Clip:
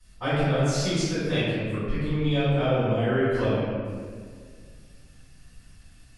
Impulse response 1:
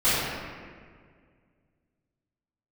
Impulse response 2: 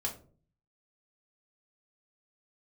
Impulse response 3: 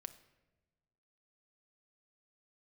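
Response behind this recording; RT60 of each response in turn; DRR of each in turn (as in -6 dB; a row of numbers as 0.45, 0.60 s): 1; 1.9 s, 0.45 s, not exponential; -15.0, -0.5, 10.5 dB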